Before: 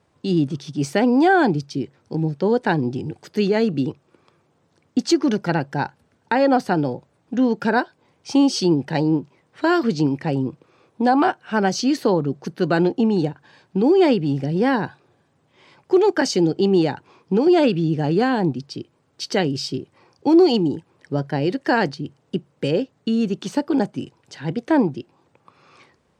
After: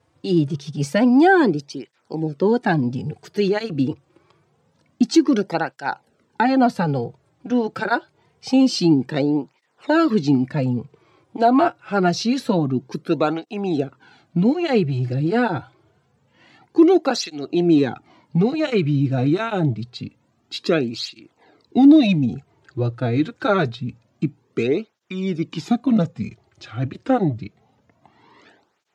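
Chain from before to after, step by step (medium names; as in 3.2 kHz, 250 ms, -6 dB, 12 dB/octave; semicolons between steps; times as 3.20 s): gliding tape speed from 101% -> 80%; cancelling through-zero flanger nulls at 0.26 Hz, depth 5.2 ms; trim +3 dB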